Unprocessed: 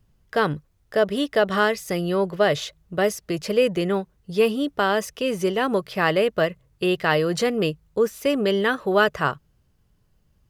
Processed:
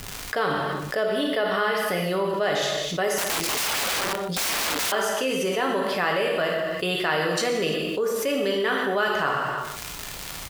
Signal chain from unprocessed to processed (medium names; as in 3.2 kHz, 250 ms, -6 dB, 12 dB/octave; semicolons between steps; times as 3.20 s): crackle 190 per s -44 dBFS; 1.06–2.05 s: peaking EQ 6.9 kHz -14 dB 0.49 oct; gated-style reverb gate 360 ms falling, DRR 0.5 dB; 3.18–4.92 s: integer overflow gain 22.5 dB; bass shelf 270 Hz -11.5 dB; delay 123 ms -19.5 dB; level flattener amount 70%; trim -7 dB